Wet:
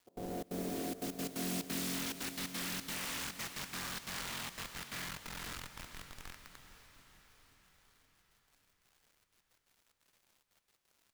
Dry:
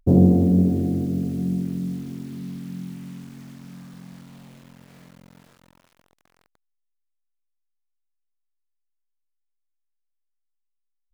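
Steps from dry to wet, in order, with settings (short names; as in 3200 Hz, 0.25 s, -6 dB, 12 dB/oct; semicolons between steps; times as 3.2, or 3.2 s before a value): opening faded in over 1.71 s; HPF 1200 Hz 12 dB/oct; in parallel at -4 dB: Schmitt trigger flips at -52 dBFS; on the sum: crackle 400/s -71 dBFS; step gate "x.xxx.xxxxx.x." 177 bpm -24 dB; on a send: diffused feedback echo 0.463 s, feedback 59%, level -11 dB; on the sum: gain +13.5 dB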